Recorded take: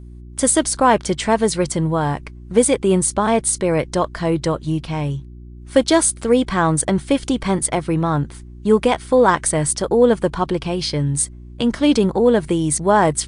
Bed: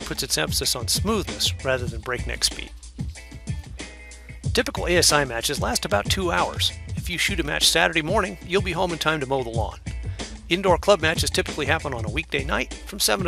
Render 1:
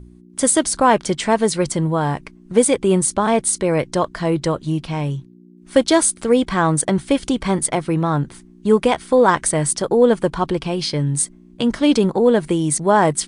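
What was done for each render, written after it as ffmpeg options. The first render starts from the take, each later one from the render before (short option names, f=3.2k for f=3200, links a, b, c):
-af "bandreject=f=60:t=h:w=4,bandreject=f=120:t=h:w=4"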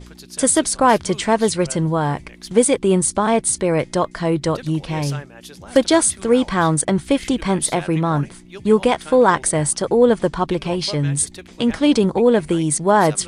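-filter_complex "[1:a]volume=-15.5dB[a];[0:a][a]amix=inputs=2:normalize=0"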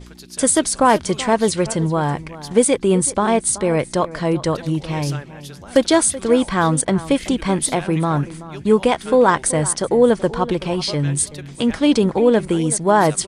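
-filter_complex "[0:a]asplit=2[a][b];[b]adelay=379,volume=-16dB,highshelf=f=4k:g=-8.53[c];[a][c]amix=inputs=2:normalize=0"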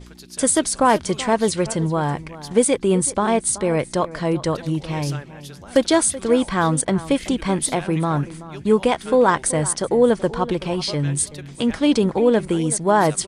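-af "volume=-2dB"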